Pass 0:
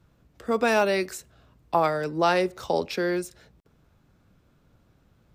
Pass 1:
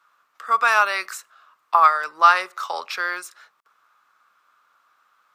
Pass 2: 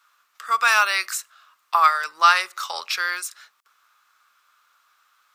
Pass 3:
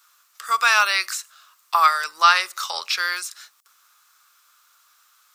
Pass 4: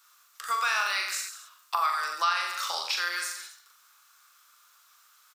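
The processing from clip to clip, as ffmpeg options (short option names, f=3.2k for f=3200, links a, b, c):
-af "highpass=f=1.2k:t=q:w=5.3,volume=2.5dB"
-af "tiltshelf=f=1.5k:g=-8.5"
-filter_complex "[0:a]acrossover=split=4700[a][b];[b]acompressor=threshold=-44dB:ratio=4:attack=1:release=60[c];[a][c]amix=inputs=2:normalize=0,bass=f=250:g=-1,treble=f=4k:g=12"
-filter_complex "[0:a]asplit=2[a][b];[b]aecho=0:1:40|86|138.9|199.7|269.7:0.631|0.398|0.251|0.158|0.1[c];[a][c]amix=inputs=2:normalize=0,acompressor=threshold=-24dB:ratio=2.5,volume=-3.5dB"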